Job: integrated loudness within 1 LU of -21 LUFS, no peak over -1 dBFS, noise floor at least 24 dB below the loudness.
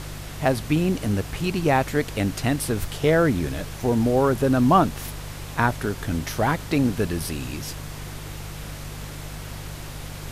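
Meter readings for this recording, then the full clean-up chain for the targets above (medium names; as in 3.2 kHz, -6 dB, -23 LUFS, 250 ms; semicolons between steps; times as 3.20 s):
hum 50 Hz; highest harmonic 150 Hz; hum level -35 dBFS; noise floor -36 dBFS; noise floor target -48 dBFS; loudness -23.5 LUFS; peak level -6.5 dBFS; loudness target -21.0 LUFS
-> de-hum 50 Hz, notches 3; noise print and reduce 12 dB; trim +2.5 dB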